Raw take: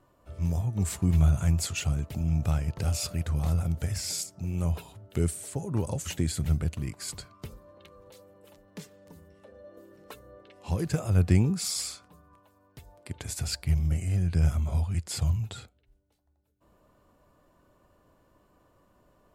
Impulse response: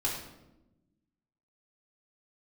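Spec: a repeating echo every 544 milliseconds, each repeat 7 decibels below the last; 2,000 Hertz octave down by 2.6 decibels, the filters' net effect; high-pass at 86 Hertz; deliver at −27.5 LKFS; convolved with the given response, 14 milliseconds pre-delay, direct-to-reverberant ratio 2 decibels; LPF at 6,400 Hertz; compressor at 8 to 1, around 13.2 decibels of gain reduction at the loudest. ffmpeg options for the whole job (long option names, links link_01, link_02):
-filter_complex "[0:a]highpass=86,lowpass=6400,equalizer=frequency=2000:width_type=o:gain=-3.5,acompressor=threshold=-32dB:ratio=8,aecho=1:1:544|1088|1632|2176|2720:0.447|0.201|0.0905|0.0407|0.0183,asplit=2[link_01][link_02];[1:a]atrim=start_sample=2205,adelay=14[link_03];[link_02][link_03]afir=irnorm=-1:irlink=0,volume=-8dB[link_04];[link_01][link_04]amix=inputs=2:normalize=0,volume=7dB"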